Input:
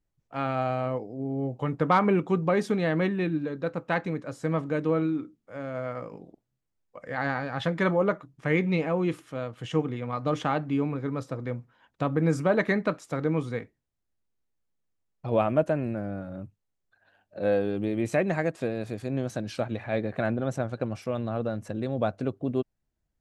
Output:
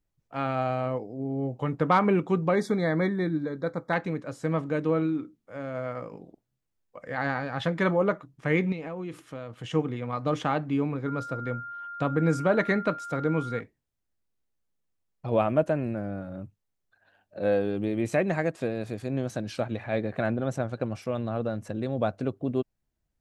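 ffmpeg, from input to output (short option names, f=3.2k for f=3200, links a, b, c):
-filter_complex "[0:a]asettb=1/sr,asplit=3[a][b][c];[a]atrim=end=2.554[d];[b]atrim=start=2.55:end=3.93,asetpts=PTS-STARTPTS,afade=t=in:d=0.004:c=qsin,afade=t=out:st=1.376:d=0.004:c=qsin,asuperstop=centerf=2800:order=20:qfactor=2.8[e];[c]atrim=start=3.926[f];[d][e]acrossfade=d=0.004:c1=hsin:c2=qsin[g];[g][f]acrossfade=d=0.004:c1=qsin:c2=hsin,asettb=1/sr,asplit=3[h][i][j];[h]atrim=end=8.724[k];[i]atrim=start=8.72:end=9.71,asetpts=PTS-STARTPTS,afade=t=in:d=0.004:c=qsin,afade=t=out:st=0.986:d=0.004:c=qsin,acompressor=threshold=-32dB:ratio=6:attack=3.2:release=140:knee=1:detection=peak[l];[j]atrim=start=9.706[m];[k][l]acrossfade=d=0.004:c1=hsin:c2=qsin[n];[n][m]acrossfade=d=0.004:c1=qsin:c2=hsin,asettb=1/sr,asplit=3[o][p][q];[o]atrim=end=11.064[r];[p]atrim=start=11.06:end=13.6,asetpts=PTS-STARTPTS,afade=t=in:d=0.004:c=qsin,afade=t=out:st=2.536:d=0.004:c=qsin,aeval=exprs='val(0)+0.0158*sin(2*PI*1400*n/s)':c=same[s];[q]atrim=start=13.596[t];[r][s]acrossfade=d=0.004:c1=hsin:c2=qsin[u];[u][t]acrossfade=d=0.004:c1=qsin:c2=hsin"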